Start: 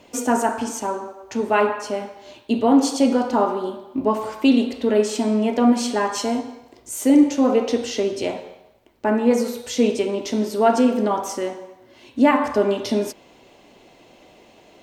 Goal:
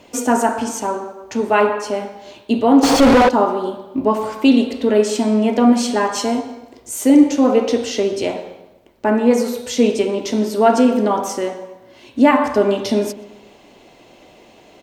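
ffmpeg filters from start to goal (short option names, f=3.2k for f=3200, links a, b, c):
-filter_complex "[0:a]asplit=2[a][b];[b]adelay=125,lowpass=f=1.4k:p=1,volume=-15dB,asplit=2[c][d];[d]adelay=125,lowpass=f=1.4k:p=1,volume=0.49,asplit=2[e][f];[f]adelay=125,lowpass=f=1.4k:p=1,volume=0.49,asplit=2[g][h];[h]adelay=125,lowpass=f=1.4k:p=1,volume=0.49,asplit=2[i][j];[j]adelay=125,lowpass=f=1.4k:p=1,volume=0.49[k];[a][c][e][g][i][k]amix=inputs=6:normalize=0,asettb=1/sr,asplit=3[l][m][n];[l]atrim=end=2.834[o];[m]atrim=start=2.83:end=3.29,asetpts=PTS-STARTPTS,afade=t=in:d=0.004:c=qsin,afade=t=out:st=0.456:d=0.004:c=qsin,asplit=2[p][q];[q]highpass=f=720:p=1,volume=36dB,asoftclip=type=tanh:threshold=-7dB[r];[p][r]amix=inputs=2:normalize=0,lowpass=f=1.6k:p=1,volume=-6dB[s];[n]atrim=start=3.286[t];[o][s]acrossfade=d=0.004:c1=hsin:c2=qsin[u];[u][t]acrossfade=d=0.004:c1=qsin:c2=hsin,volume=3.5dB"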